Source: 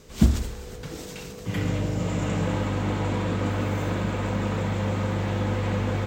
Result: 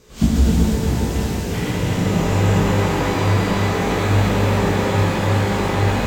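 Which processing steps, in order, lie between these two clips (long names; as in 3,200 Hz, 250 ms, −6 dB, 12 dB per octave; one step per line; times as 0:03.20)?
feedback delay that plays each chunk backwards 179 ms, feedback 70%, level −3 dB
chorus effect 2.4 Hz, delay 15.5 ms, depth 7.2 ms
reverb with rising layers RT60 3 s, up +12 semitones, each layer −8 dB, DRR −4.5 dB
level +3 dB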